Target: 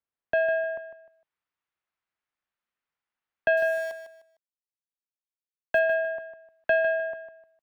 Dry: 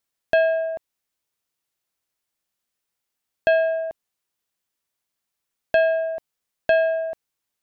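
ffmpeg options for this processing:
ffmpeg -i in.wav -filter_complex "[0:a]lowpass=1900,acrossover=split=260|680|810[link_01][link_02][link_03][link_04];[link_04]dynaudnorm=framelen=250:gausssize=3:maxgain=9dB[link_05];[link_01][link_02][link_03][link_05]amix=inputs=4:normalize=0,asettb=1/sr,asplit=3[link_06][link_07][link_08];[link_06]atrim=end=3.574[link_09];[link_07]atrim=start=3.57:end=5.79,asetpts=PTS-STARTPTS,afade=type=in:duration=0.004:curve=qsin,afade=type=out:start_time=2.216:duration=0.004:curve=qsin,aeval=exprs='val(0)*gte(abs(val(0)),0.0251)':channel_layout=same[link_10];[link_08]atrim=start=5.786[link_11];[link_09][link_10]acrossfade=duration=0.004:curve1=hsin:curve2=qsin[link_12];[link_12][link_11]acrossfade=duration=0.004:curve1=qsin:curve2=hsin,aecho=1:1:152|304|456:0.316|0.0885|0.0248,volume=-7.5dB" out.wav

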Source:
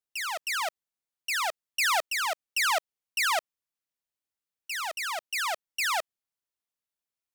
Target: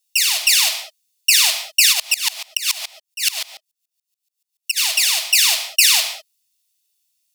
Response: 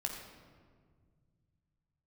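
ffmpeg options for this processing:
-filter_complex "[0:a]acontrast=61,alimiter=limit=-17dB:level=0:latency=1,aexciter=amount=11.4:drive=6.3:freq=2300[link_01];[1:a]atrim=start_sample=2205,afade=type=out:start_time=0.26:duration=0.01,atrim=end_sample=11907[link_02];[link_01][link_02]afir=irnorm=-1:irlink=0,asplit=3[link_03][link_04][link_05];[link_03]afade=type=out:start_time=1.92:duration=0.02[link_06];[link_04]aeval=exprs='val(0)*pow(10,-24*if(lt(mod(-7*n/s,1),2*abs(-7)/1000),1-mod(-7*n/s,1)/(2*abs(-7)/1000),(mod(-7*n/s,1)-2*abs(-7)/1000)/(1-2*abs(-7)/1000))/20)':channel_layout=same,afade=type=in:start_time=1.92:duration=0.02,afade=type=out:start_time=4.76:duration=0.02[link_07];[link_05]afade=type=in:start_time=4.76:duration=0.02[link_08];[link_06][link_07][link_08]amix=inputs=3:normalize=0,volume=-9dB"

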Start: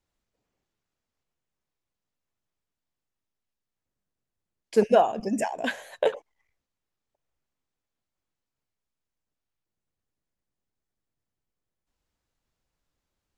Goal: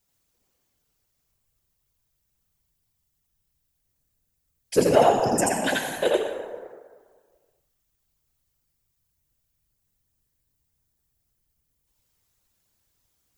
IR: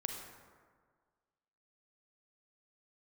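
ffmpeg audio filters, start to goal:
-filter_complex "[0:a]asplit=2[link_01][link_02];[1:a]atrim=start_sample=2205,adelay=84[link_03];[link_02][link_03]afir=irnorm=-1:irlink=0,volume=0dB[link_04];[link_01][link_04]amix=inputs=2:normalize=0,acontrast=51,afftfilt=real='hypot(re,im)*cos(2*PI*random(0))':imag='hypot(re,im)*sin(2*PI*random(1))':win_size=512:overlap=0.75,aemphasis=mode=production:type=75kf"

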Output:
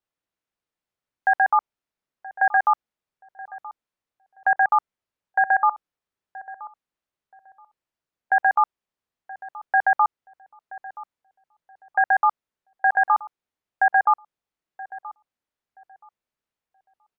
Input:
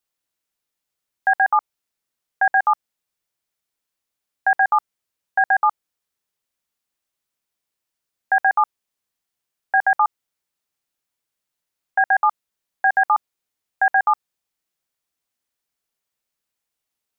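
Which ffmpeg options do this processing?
ffmpeg -i in.wav -filter_complex "[0:a]lowpass=frequency=1700:poles=1,asplit=2[link_01][link_02];[link_02]adelay=976,lowpass=frequency=940:poles=1,volume=-15.5dB,asplit=2[link_03][link_04];[link_04]adelay=976,lowpass=frequency=940:poles=1,volume=0.28,asplit=2[link_05][link_06];[link_06]adelay=976,lowpass=frequency=940:poles=1,volume=0.28[link_07];[link_03][link_05][link_07]amix=inputs=3:normalize=0[link_08];[link_01][link_08]amix=inputs=2:normalize=0" out.wav

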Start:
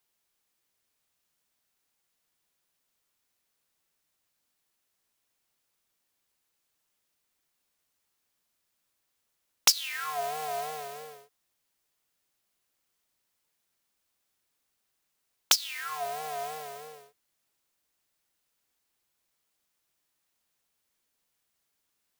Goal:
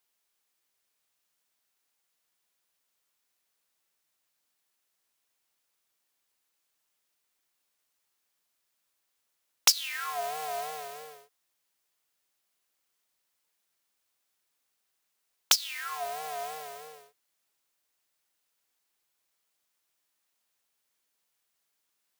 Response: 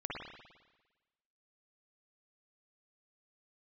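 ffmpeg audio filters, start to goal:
-af "lowshelf=frequency=270:gain=-9"

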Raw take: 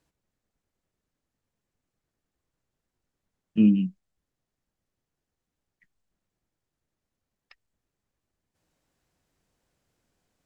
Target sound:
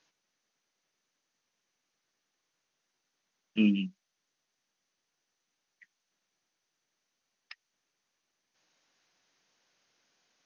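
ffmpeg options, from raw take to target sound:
ffmpeg -i in.wav -af "highpass=190,tiltshelf=frequency=860:gain=-7.5,volume=2dB" -ar 24000 -c:a mp2 -b:a 64k out.mp2

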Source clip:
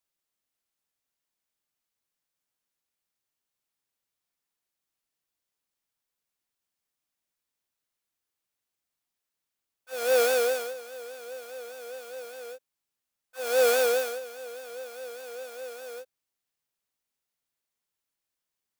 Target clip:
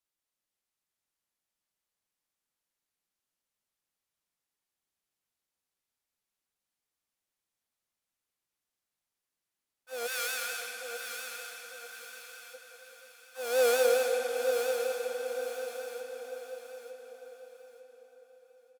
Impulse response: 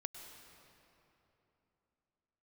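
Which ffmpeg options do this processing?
-filter_complex "[0:a]asplit=3[link_01][link_02][link_03];[link_01]afade=type=out:start_time=10.06:duration=0.02[link_04];[link_02]highpass=frequency=1200:width=0.5412,highpass=frequency=1200:width=1.3066,afade=type=in:start_time=10.06:duration=0.02,afade=type=out:start_time=12.53:duration=0.02[link_05];[link_03]afade=type=in:start_time=12.53:duration=0.02[link_06];[link_04][link_05][link_06]amix=inputs=3:normalize=0,aecho=1:1:899|1798|2697|3596:0.447|0.143|0.0457|0.0146[link_07];[1:a]atrim=start_sample=2205,asetrate=26019,aresample=44100[link_08];[link_07][link_08]afir=irnorm=-1:irlink=0,volume=-2.5dB"

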